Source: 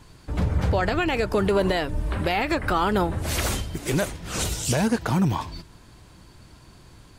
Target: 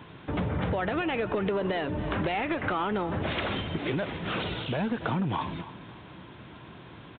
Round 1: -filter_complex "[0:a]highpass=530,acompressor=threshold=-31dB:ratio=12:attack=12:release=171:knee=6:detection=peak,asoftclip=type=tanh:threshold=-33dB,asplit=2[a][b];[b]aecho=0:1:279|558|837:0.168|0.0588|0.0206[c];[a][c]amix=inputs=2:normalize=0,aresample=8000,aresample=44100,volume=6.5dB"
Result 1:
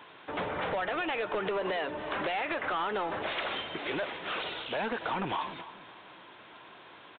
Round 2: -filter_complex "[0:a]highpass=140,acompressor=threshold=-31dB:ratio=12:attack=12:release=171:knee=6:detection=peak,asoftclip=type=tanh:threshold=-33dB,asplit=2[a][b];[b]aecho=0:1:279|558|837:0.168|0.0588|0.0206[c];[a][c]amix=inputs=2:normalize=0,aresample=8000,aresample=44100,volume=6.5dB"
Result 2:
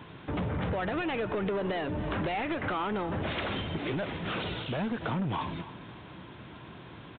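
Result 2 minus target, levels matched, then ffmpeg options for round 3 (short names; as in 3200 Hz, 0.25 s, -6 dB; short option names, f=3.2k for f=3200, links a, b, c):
soft clip: distortion +8 dB
-filter_complex "[0:a]highpass=140,acompressor=threshold=-31dB:ratio=12:attack=12:release=171:knee=6:detection=peak,asoftclip=type=tanh:threshold=-26dB,asplit=2[a][b];[b]aecho=0:1:279|558|837:0.168|0.0588|0.0206[c];[a][c]amix=inputs=2:normalize=0,aresample=8000,aresample=44100,volume=6.5dB"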